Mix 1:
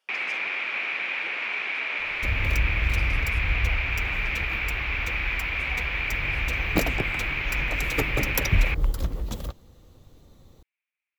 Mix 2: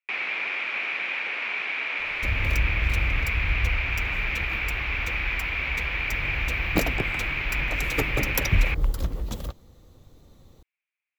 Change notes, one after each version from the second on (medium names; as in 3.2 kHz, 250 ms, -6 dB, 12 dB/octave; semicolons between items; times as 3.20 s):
speech: muted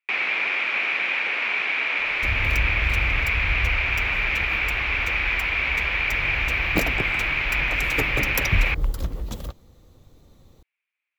first sound +5.0 dB